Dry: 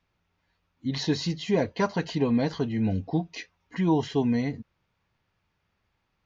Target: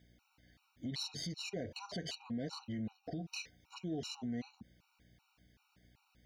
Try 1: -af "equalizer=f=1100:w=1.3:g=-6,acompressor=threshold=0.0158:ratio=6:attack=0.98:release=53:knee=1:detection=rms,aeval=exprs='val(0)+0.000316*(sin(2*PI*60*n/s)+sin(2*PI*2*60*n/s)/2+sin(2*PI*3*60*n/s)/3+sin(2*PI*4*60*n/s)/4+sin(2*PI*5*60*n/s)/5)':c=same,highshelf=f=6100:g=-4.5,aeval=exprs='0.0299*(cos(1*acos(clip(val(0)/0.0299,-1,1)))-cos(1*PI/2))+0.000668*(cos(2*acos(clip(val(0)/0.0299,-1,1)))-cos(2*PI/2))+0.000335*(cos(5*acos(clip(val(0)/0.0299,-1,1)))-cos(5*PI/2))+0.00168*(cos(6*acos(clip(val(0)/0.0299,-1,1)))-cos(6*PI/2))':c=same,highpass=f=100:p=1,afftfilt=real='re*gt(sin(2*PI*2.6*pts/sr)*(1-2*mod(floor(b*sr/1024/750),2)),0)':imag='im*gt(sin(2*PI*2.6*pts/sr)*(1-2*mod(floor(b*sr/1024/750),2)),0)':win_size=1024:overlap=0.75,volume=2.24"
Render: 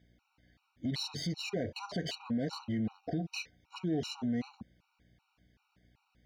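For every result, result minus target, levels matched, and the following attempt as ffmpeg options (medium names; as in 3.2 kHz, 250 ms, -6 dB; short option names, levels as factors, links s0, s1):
compression: peak gain reduction -7 dB; 8 kHz band -5.0 dB
-af "equalizer=f=1100:w=1.3:g=-6,acompressor=threshold=0.00596:ratio=6:attack=0.98:release=53:knee=1:detection=rms,aeval=exprs='val(0)+0.000316*(sin(2*PI*60*n/s)+sin(2*PI*2*60*n/s)/2+sin(2*PI*3*60*n/s)/3+sin(2*PI*4*60*n/s)/4+sin(2*PI*5*60*n/s)/5)':c=same,highshelf=f=6100:g=-4.5,aeval=exprs='0.0299*(cos(1*acos(clip(val(0)/0.0299,-1,1)))-cos(1*PI/2))+0.000668*(cos(2*acos(clip(val(0)/0.0299,-1,1)))-cos(2*PI/2))+0.000335*(cos(5*acos(clip(val(0)/0.0299,-1,1)))-cos(5*PI/2))+0.00168*(cos(6*acos(clip(val(0)/0.0299,-1,1)))-cos(6*PI/2))':c=same,highpass=f=100:p=1,afftfilt=real='re*gt(sin(2*PI*2.6*pts/sr)*(1-2*mod(floor(b*sr/1024/750),2)),0)':imag='im*gt(sin(2*PI*2.6*pts/sr)*(1-2*mod(floor(b*sr/1024/750),2)),0)':win_size=1024:overlap=0.75,volume=2.24"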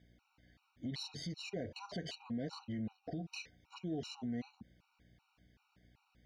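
8 kHz band -5.0 dB
-af "equalizer=f=1100:w=1.3:g=-6,acompressor=threshold=0.00596:ratio=6:attack=0.98:release=53:knee=1:detection=rms,aeval=exprs='val(0)+0.000316*(sin(2*PI*60*n/s)+sin(2*PI*2*60*n/s)/2+sin(2*PI*3*60*n/s)/3+sin(2*PI*4*60*n/s)/4+sin(2*PI*5*60*n/s)/5)':c=same,highshelf=f=6100:g=7.5,aeval=exprs='0.0299*(cos(1*acos(clip(val(0)/0.0299,-1,1)))-cos(1*PI/2))+0.000668*(cos(2*acos(clip(val(0)/0.0299,-1,1)))-cos(2*PI/2))+0.000335*(cos(5*acos(clip(val(0)/0.0299,-1,1)))-cos(5*PI/2))+0.00168*(cos(6*acos(clip(val(0)/0.0299,-1,1)))-cos(6*PI/2))':c=same,highpass=f=100:p=1,afftfilt=real='re*gt(sin(2*PI*2.6*pts/sr)*(1-2*mod(floor(b*sr/1024/750),2)),0)':imag='im*gt(sin(2*PI*2.6*pts/sr)*(1-2*mod(floor(b*sr/1024/750),2)),0)':win_size=1024:overlap=0.75,volume=2.24"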